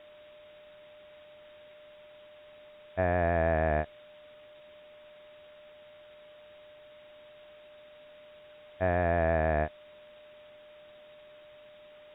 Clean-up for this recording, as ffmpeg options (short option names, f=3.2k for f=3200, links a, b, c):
-af "bandreject=f=600:w=30,afwtdn=0.0022"